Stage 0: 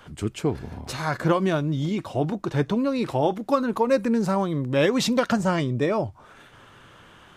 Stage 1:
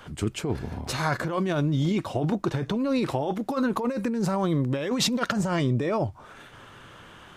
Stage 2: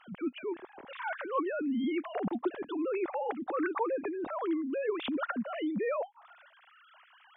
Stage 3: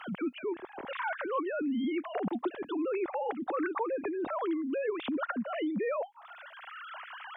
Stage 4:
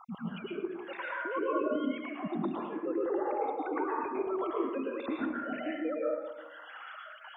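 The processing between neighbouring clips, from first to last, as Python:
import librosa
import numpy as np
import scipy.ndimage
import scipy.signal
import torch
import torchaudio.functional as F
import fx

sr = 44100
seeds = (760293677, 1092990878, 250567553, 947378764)

y1 = fx.over_compress(x, sr, threshold_db=-25.0, ratio=-1.0)
y2 = fx.sine_speech(y1, sr)
y2 = y2 * 10.0 ** (-7.5 / 20.0)
y3 = fx.band_squash(y2, sr, depth_pct=70)
y4 = fx.spec_dropout(y3, sr, seeds[0], share_pct=53)
y4 = fx.rev_plate(y4, sr, seeds[1], rt60_s=1.2, hf_ratio=0.35, predelay_ms=95, drr_db=-4.5)
y4 = y4 * 10.0 ** (-3.5 / 20.0)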